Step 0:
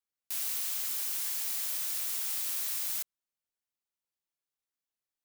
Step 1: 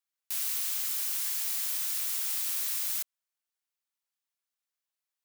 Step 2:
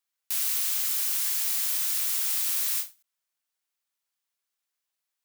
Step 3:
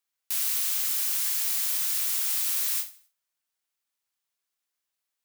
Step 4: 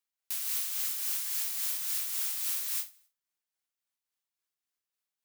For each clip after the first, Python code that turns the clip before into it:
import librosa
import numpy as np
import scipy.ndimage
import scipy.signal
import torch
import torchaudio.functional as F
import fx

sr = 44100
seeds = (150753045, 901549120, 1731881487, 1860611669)

y1 = scipy.signal.sosfilt(scipy.signal.butter(2, 790.0, 'highpass', fs=sr, output='sos'), x)
y1 = F.gain(torch.from_numpy(y1), 2.0).numpy()
y2 = fx.low_shelf(y1, sr, hz=340.0, db=-6.5)
y2 = fx.end_taper(y2, sr, db_per_s=240.0)
y2 = F.gain(torch.from_numpy(y2), 4.5).numpy()
y3 = fx.echo_feedback(y2, sr, ms=85, feedback_pct=33, wet_db=-18.5)
y4 = y3 * (1.0 - 0.41 / 2.0 + 0.41 / 2.0 * np.cos(2.0 * np.pi * 3.6 * (np.arange(len(y3)) / sr)))
y4 = F.gain(torch.from_numpy(y4), -4.0).numpy()